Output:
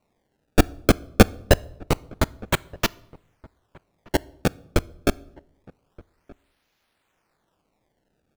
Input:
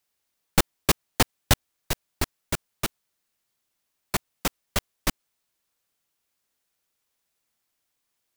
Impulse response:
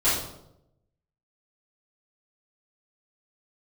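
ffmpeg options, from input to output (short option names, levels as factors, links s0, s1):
-filter_complex "[0:a]acrusher=samples=26:mix=1:aa=0.000001:lfo=1:lforange=41.6:lforate=0.26,asplit=2[s0][s1];[s1]adelay=1224,volume=0.0562,highshelf=f=4000:g=-27.6[s2];[s0][s2]amix=inputs=2:normalize=0,asplit=2[s3][s4];[1:a]atrim=start_sample=2205[s5];[s4][s5]afir=irnorm=-1:irlink=0,volume=0.0158[s6];[s3][s6]amix=inputs=2:normalize=0,volume=2"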